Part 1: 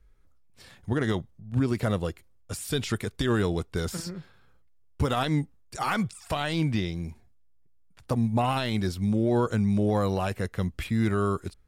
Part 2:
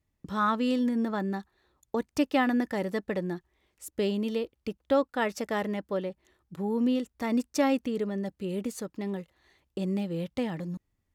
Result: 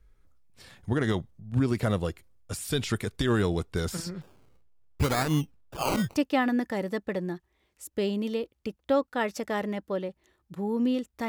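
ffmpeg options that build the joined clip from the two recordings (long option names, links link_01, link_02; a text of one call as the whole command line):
ffmpeg -i cue0.wav -i cue1.wav -filter_complex "[0:a]asettb=1/sr,asplit=3[link_01][link_02][link_03];[link_01]atrim=end=4.214[link_04];[link_02]atrim=start=4.21:end=6.17,asetpts=PTS-STARTPTS,afade=type=in:duration=0.004:curve=qsin,afade=type=out:start_time=1.956:duration=0.004:curve=qsin,acrusher=samples=20:mix=1:aa=0.000001:lfo=1:lforange=12:lforate=0.68[link_05];[link_03]atrim=start=6.166[link_06];[link_04][link_05]acrossfade=duration=0.004:curve1=hsin:curve2=qsin[link_07];[link_07][link_06]acrossfade=duration=0.004:curve1=qsin:curve2=hsin,apad=whole_dur=11.28,atrim=end=11.28,atrim=end=6.17,asetpts=PTS-STARTPTS[link_08];[1:a]atrim=start=2.08:end=7.29,asetpts=PTS-STARTPTS[link_09];[link_08][link_09]acrossfade=duration=0.1:curve1=tri:curve2=tri" out.wav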